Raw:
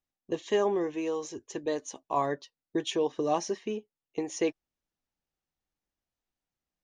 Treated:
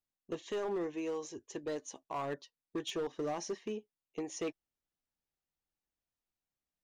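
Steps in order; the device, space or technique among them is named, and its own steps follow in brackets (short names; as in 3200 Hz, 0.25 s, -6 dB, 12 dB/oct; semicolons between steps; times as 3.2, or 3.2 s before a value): limiter into clipper (limiter -20.5 dBFS, peak gain reduction 5.5 dB; hard clip -26 dBFS, distortion -14 dB); gain -5.5 dB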